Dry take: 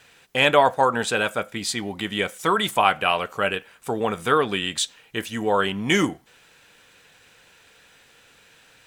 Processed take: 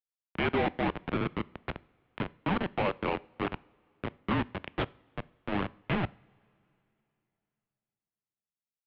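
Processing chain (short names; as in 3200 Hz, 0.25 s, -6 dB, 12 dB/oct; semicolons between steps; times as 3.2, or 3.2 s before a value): Schmitt trigger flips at -17 dBFS; mistuned SSB -190 Hz 280–3300 Hz; two-slope reverb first 0.48 s, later 3.1 s, from -18 dB, DRR 20 dB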